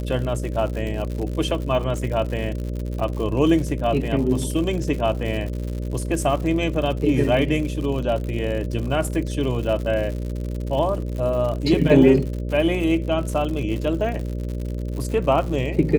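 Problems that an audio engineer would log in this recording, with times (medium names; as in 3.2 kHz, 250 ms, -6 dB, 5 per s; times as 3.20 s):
buzz 60 Hz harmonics 10 -27 dBFS
crackle 110 per s -29 dBFS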